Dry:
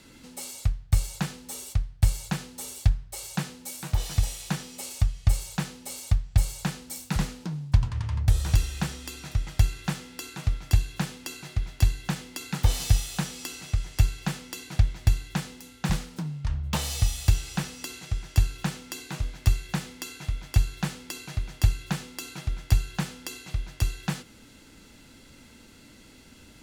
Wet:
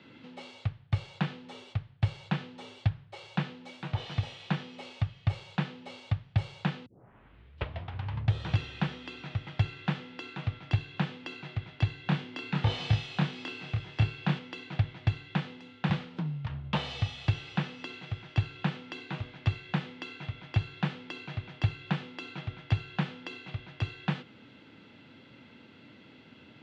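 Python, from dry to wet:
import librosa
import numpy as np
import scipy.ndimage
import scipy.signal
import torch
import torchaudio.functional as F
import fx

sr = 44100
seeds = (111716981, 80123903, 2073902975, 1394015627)

y = fx.doubler(x, sr, ms=27.0, db=-3.5, at=(12.04, 14.39))
y = fx.edit(y, sr, fx.tape_start(start_s=6.86, length_s=1.33), tone=tone)
y = scipy.signal.sosfilt(scipy.signal.cheby1(3, 1.0, [110.0, 3300.0], 'bandpass', fs=sr, output='sos'), y)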